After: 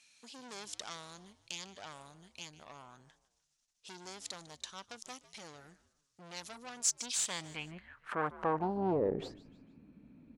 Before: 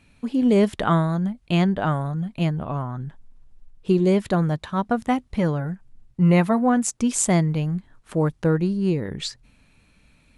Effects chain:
dynamic equaliser 1,700 Hz, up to −8 dB, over −42 dBFS, Q 1.1
in parallel at +1 dB: downward compressor, threshold −31 dBFS, peak gain reduction 16.5 dB
on the sum: tube saturation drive 21 dB, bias 0.55
band-pass filter sweep 6,100 Hz → 260 Hz, 0:06.71–0:09.78
echo with shifted repeats 150 ms, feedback 42%, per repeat −94 Hz, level −17.5 dB
level +5.5 dB

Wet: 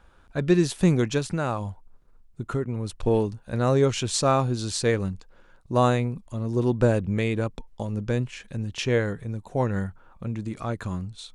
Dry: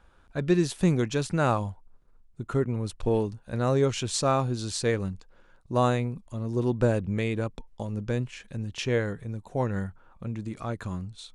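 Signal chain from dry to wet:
0:01.18–0:03.06: downward compressor 2.5 to 1, threshold −28 dBFS, peak gain reduction 6.5 dB
level +3 dB

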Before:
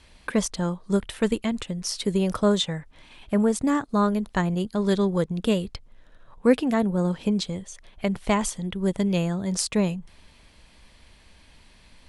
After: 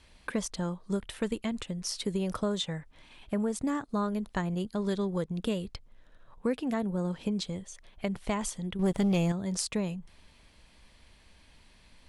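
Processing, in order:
downward compressor 3 to 1, threshold −22 dBFS, peak gain reduction 8 dB
0:08.79–0:09.32: leveller curve on the samples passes 2
level −5 dB

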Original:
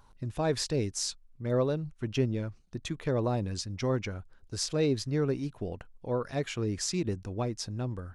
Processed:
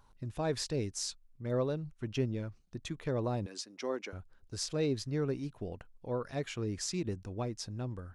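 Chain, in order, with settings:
0:03.46–0:04.13: high-pass filter 280 Hz 24 dB per octave
level −4.5 dB

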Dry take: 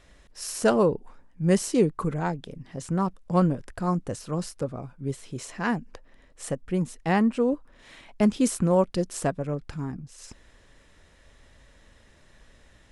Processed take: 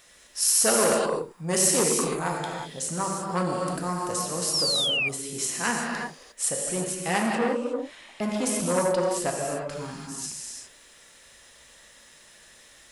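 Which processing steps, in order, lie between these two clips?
RIAA equalisation recording
reverb whose tail is shaped and stops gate 380 ms flat, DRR −1.5 dB
0:04.53–0:05.09: sound drawn into the spectrogram fall 2,300–5,700 Hz −25 dBFS
0:07.35–0:09.70: high-shelf EQ 3,900 Hz −11.5 dB
saturating transformer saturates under 1,500 Hz

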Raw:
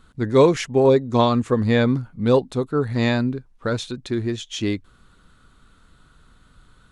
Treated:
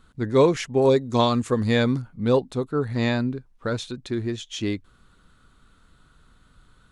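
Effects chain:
0:00.82–0:02.02: high-shelf EQ 4,400 Hz +11 dB
level −3 dB

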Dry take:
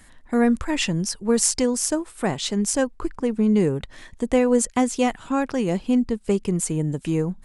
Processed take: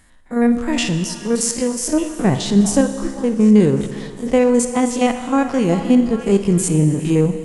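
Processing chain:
spectrum averaged block by block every 50 ms
0:01.81–0:02.81: low-shelf EQ 380 Hz +10 dB
automatic gain control gain up to 12 dB
echo through a band-pass that steps 399 ms, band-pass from 920 Hz, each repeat 0.7 octaves, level −9.5 dB
four-comb reverb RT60 2 s, combs from 26 ms, DRR 9 dB
level −1.5 dB

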